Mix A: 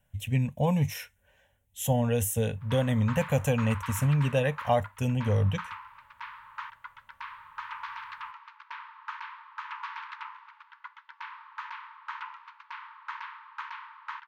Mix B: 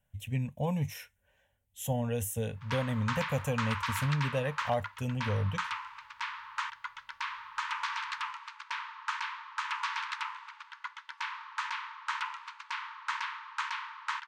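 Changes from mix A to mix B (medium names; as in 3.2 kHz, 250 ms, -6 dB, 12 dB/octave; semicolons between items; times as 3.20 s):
speech -6.0 dB; background: remove tape spacing loss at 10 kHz 30 dB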